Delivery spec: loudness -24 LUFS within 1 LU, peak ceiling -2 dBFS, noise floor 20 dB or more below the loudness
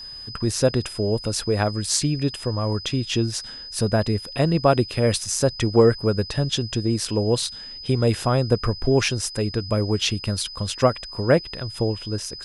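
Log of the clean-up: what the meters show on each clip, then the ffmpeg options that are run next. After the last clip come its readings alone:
steady tone 5000 Hz; tone level -35 dBFS; loudness -22.5 LUFS; peak -4.0 dBFS; loudness target -24.0 LUFS
-> -af "bandreject=f=5k:w=30"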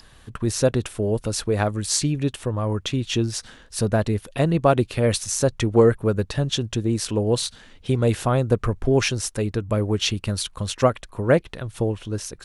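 steady tone none; loudness -23.0 LUFS; peak -4.5 dBFS; loudness target -24.0 LUFS
-> -af "volume=-1dB"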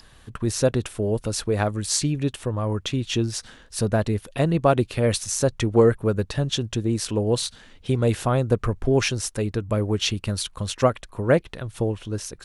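loudness -24.0 LUFS; peak -5.5 dBFS; noise floor -51 dBFS

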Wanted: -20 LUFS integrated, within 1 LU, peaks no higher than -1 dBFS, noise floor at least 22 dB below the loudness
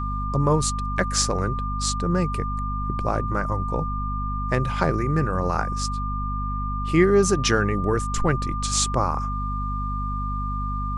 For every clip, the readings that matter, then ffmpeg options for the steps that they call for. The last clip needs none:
hum 50 Hz; harmonics up to 250 Hz; hum level -25 dBFS; steady tone 1200 Hz; tone level -29 dBFS; loudness -24.0 LUFS; peak -6.5 dBFS; loudness target -20.0 LUFS
-> -af "bandreject=f=50:t=h:w=6,bandreject=f=100:t=h:w=6,bandreject=f=150:t=h:w=6,bandreject=f=200:t=h:w=6,bandreject=f=250:t=h:w=6"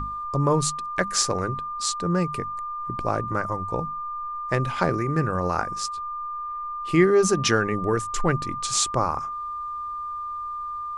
hum none; steady tone 1200 Hz; tone level -29 dBFS
-> -af "bandreject=f=1.2k:w=30"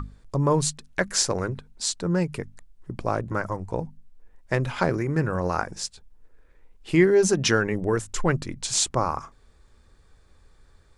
steady tone none; loudness -25.0 LUFS; peak -6.5 dBFS; loudness target -20.0 LUFS
-> -af "volume=5dB"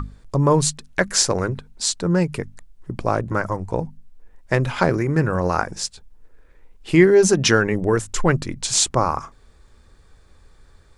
loudness -20.0 LUFS; peak -1.5 dBFS; noise floor -52 dBFS

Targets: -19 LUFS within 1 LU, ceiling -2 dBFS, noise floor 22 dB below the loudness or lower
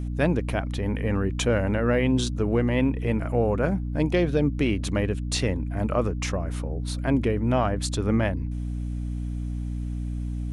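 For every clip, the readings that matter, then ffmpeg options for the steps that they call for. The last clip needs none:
hum 60 Hz; harmonics up to 300 Hz; hum level -27 dBFS; loudness -26.0 LUFS; peak -9.5 dBFS; loudness target -19.0 LUFS
-> -af "bandreject=f=60:t=h:w=4,bandreject=f=120:t=h:w=4,bandreject=f=180:t=h:w=4,bandreject=f=240:t=h:w=4,bandreject=f=300:t=h:w=4"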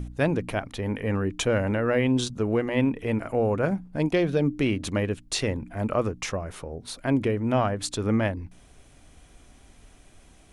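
hum none; loudness -26.5 LUFS; peak -10.5 dBFS; loudness target -19.0 LUFS
-> -af "volume=7.5dB"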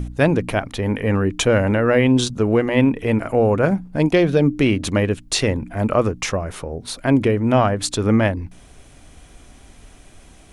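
loudness -19.0 LUFS; peak -3.0 dBFS; noise floor -47 dBFS

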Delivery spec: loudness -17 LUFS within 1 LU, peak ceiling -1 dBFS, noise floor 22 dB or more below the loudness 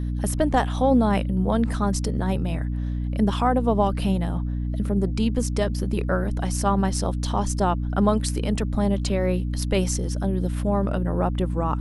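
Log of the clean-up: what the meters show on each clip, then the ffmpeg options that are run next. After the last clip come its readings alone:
hum 60 Hz; harmonics up to 300 Hz; hum level -24 dBFS; loudness -24.0 LUFS; peak -5.5 dBFS; loudness target -17.0 LUFS
-> -af "bandreject=f=60:t=h:w=4,bandreject=f=120:t=h:w=4,bandreject=f=180:t=h:w=4,bandreject=f=240:t=h:w=4,bandreject=f=300:t=h:w=4"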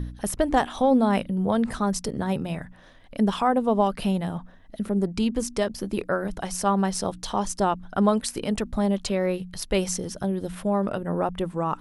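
hum none; loudness -25.5 LUFS; peak -6.5 dBFS; loudness target -17.0 LUFS
-> -af "volume=8.5dB,alimiter=limit=-1dB:level=0:latency=1"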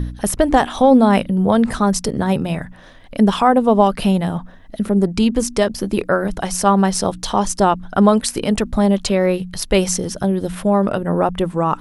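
loudness -17.0 LUFS; peak -1.0 dBFS; noise floor -41 dBFS

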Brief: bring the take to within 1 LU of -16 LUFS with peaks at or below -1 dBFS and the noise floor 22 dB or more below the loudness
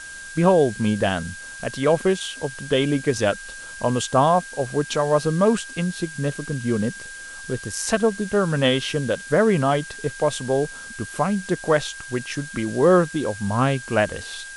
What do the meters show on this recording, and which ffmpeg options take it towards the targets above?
steady tone 1600 Hz; tone level -36 dBFS; noise floor -38 dBFS; noise floor target -45 dBFS; loudness -22.5 LUFS; peak -4.5 dBFS; loudness target -16.0 LUFS
-> -af "bandreject=f=1.6k:w=30"
-af "afftdn=nr=7:nf=-38"
-af "volume=6.5dB,alimiter=limit=-1dB:level=0:latency=1"

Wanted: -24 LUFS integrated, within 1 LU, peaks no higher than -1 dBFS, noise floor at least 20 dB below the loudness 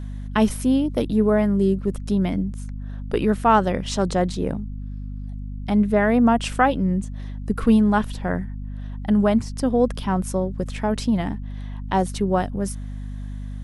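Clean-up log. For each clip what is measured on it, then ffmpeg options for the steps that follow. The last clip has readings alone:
hum 50 Hz; harmonics up to 250 Hz; hum level -29 dBFS; loudness -21.5 LUFS; peak -4.5 dBFS; loudness target -24.0 LUFS
-> -af "bandreject=f=50:t=h:w=4,bandreject=f=100:t=h:w=4,bandreject=f=150:t=h:w=4,bandreject=f=200:t=h:w=4,bandreject=f=250:t=h:w=4"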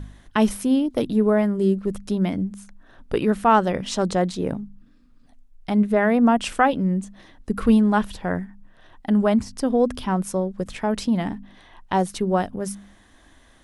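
hum none; loudness -22.0 LUFS; peak -4.5 dBFS; loudness target -24.0 LUFS
-> -af "volume=-2dB"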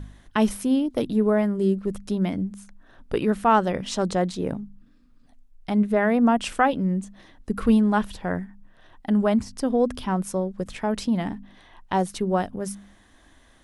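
loudness -24.0 LUFS; peak -6.5 dBFS; noise floor -56 dBFS

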